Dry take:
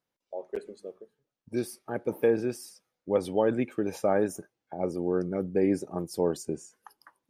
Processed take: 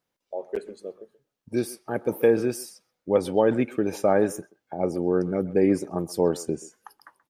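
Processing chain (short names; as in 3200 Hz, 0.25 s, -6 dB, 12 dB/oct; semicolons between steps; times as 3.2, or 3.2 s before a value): 1.9–2.63 high shelf 7600 Hz +7 dB; speakerphone echo 0.13 s, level -18 dB; gain +4.5 dB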